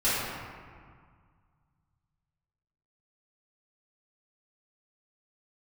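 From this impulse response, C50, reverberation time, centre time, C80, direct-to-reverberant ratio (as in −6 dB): −3.5 dB, 1.9 s, 132 ms, −0.5 dB, −14.0 dB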